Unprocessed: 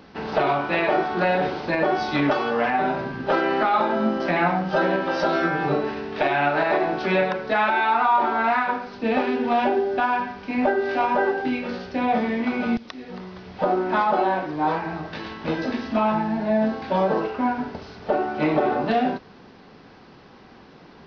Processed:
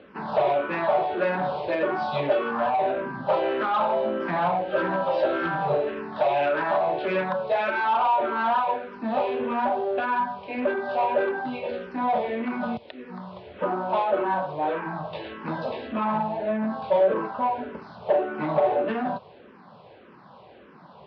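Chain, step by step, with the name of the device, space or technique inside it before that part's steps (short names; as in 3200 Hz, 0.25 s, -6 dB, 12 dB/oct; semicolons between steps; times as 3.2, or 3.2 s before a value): barber-pole phaser into a guitar amplifier (endless phaser -1.7 Hz; soft clip -21.5 dBFS, distortion -13 dB; speaker cabinet 96–3800 Hz, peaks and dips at 280 Hz -4 dB, 580 Hz +9 dB, 1000 Hz +6 dB, 2000 Hz -4 dB)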